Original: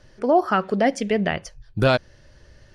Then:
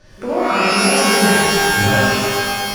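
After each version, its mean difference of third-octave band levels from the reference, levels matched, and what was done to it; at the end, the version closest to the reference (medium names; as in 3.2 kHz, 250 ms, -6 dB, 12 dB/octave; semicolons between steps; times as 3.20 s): 16.0 dB: loudness maximiser +18.5 dB; pitch-shifted reverb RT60 2 s, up +12 st, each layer -2 dB, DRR -9.5 dB; trim -17 dB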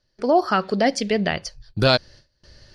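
1.5 dB: peaking EQ 4.5 kHz +13.5 dB 0.62 oct; gate with hold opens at -38 dBFS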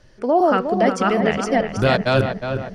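7.5 dB: chunks repeated in reverse 403 ms, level 0 dB; on a send: filtered feedback delay 361 ms, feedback 48%, low-pass 2.3 kHz, level -7 dB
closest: second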